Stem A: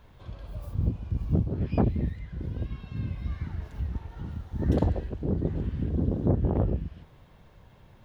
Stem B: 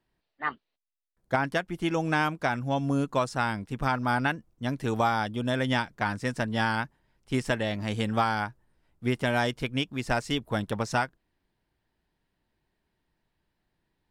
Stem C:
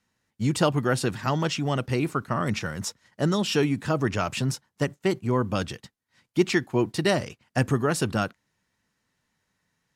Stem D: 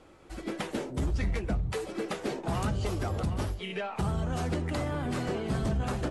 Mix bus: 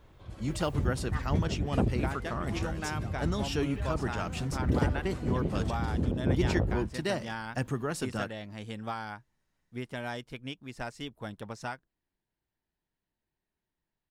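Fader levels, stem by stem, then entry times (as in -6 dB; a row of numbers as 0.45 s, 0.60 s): -3.5 dB, -11.0 dB, -9.0 dB, -11.5 dB; 0.00 s, 0.70 s, 0.00 s, 0.00 s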